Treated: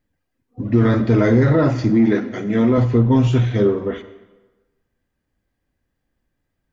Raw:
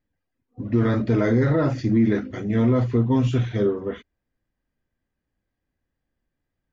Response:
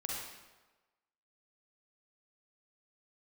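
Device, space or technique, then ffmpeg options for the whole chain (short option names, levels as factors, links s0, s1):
saturated reverb return: -filter_complex "[0:a]asettb=1/sr,asplit=3[s0][s1][s2];[s0]atrim=end=1.904[s3];[s1]atrim=start=1.9:end=2.78,asetpts=PTS-STARTPTS,afade=t=in:d=0.004:c=qsin,afade=t=out:st=0.876:d=0.004:c=qsin,highpass=180[s4];[s2]atrim=start=2.776[s5];[s3][s4]acrossfade=d=0.004:c1=hsin:c2=qsin[s6];[s6][s5]acrossfade=d=0.004:c1=qsin:c2=hsin,asplit=2[s7][s8];[1:a]atrim=start_sample=2205[s9];[s8][s9]afir=irnorm=-1:irlink=0,asoftclip=type=tanh:threshold=0.15,volume=0.355[s10];[s7][s10]amix=inputs=2:normalize=0,volume=1.5"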